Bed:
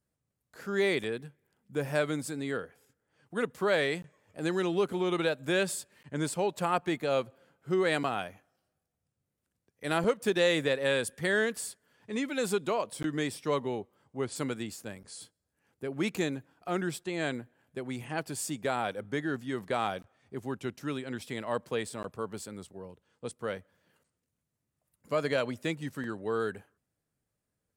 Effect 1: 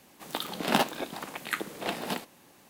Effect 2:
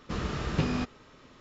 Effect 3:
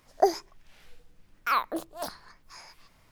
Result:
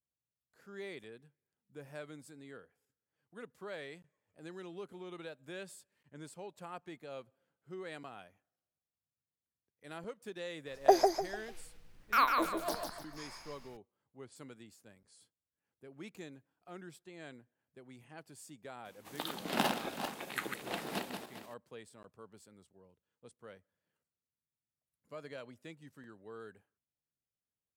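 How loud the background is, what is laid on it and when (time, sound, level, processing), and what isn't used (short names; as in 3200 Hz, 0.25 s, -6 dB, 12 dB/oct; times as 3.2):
bed -17.5 dB
10.66 add 3 -2 dB + feedback echo 0.149 s, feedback 35%, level -4.5 dB
18.85 add 1 -7 dB + regenerating reverse delay 0.201 s, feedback 40%, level -5 dB
not used: 2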